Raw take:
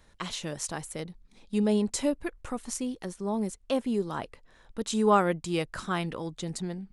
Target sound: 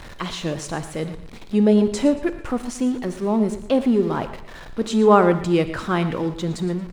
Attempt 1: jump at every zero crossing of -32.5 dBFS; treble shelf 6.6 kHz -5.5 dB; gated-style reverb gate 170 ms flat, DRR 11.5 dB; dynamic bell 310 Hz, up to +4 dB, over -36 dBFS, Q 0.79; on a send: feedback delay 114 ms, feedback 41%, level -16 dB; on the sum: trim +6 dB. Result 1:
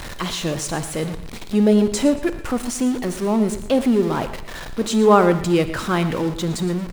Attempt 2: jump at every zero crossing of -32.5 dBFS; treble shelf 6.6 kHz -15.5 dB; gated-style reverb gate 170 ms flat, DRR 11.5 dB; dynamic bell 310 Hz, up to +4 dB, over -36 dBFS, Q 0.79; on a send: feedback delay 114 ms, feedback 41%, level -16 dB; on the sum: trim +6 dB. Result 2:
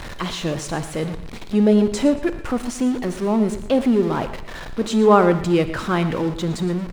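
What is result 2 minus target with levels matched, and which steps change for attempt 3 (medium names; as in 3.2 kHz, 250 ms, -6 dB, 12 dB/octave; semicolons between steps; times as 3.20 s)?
jump at every zero crossing: distortion +6 dB
change: jump at every zero crossing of -39 dBFS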